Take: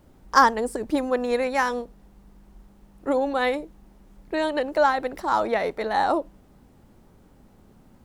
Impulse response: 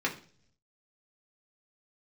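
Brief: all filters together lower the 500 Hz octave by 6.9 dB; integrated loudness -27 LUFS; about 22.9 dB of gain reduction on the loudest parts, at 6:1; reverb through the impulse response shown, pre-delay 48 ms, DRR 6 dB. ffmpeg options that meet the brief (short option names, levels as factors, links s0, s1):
-filter_complex "[0:a]equalizer=f=500:t=o:g=-8,acompressor=threshold=0.0126:ratio=6,asplit=2[s0][s1];[1:a]atrim=start_sample=2205,adelay=48[s2];[s1][s2]afir=irnorm=-1:irlink=0,volume=0.188[s3];[s0][s3]amix=inputs=2:normalize=0,volume=4.73"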